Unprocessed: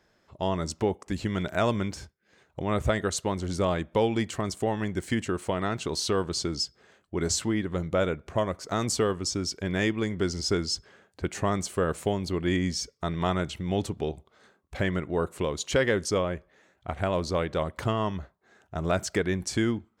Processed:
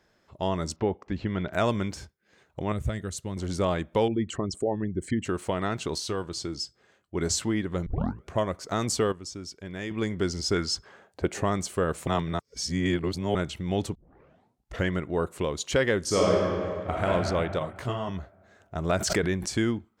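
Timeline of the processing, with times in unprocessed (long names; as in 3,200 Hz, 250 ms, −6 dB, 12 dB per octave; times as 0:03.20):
0:00.76–0:01.53: high-frequency loss of the air 230 metres
0:02.72–0:03.37: drawn EQ curve 140 Hz 0 dB, 360 Hz −8 dB, 880 Hz −14 dB, 2,000 Hz −9 dB, 4,900 Hz −8 dB, 9,700 Hz −3 dB
0:04.08–0:05.25: spectral envelope exaggerated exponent 2
0:05.98–0:07.15: tuned comb filter 110 Hz, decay 0.15 s, harmonics odd, mix 50%
0:07.86: tape start 0.40 s
0:09.12–0:09.91: clip gain −9 dB
0:10.55–0:11.42: parametric band 1,700 Hz → 430 Hz +8 dB 1.4 octaves
0:12.07–0:13.35: reverse
0:13.95: tape start 0.94 s
0:16.01–0:17.06: thrown reverb, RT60 2.3 s, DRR −4.5 dB
0:17.59–0:18.09: micro pitch shift up and down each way 25 cents
0:18.89–0:19.50: background raised ahead of every attack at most 47 dB per second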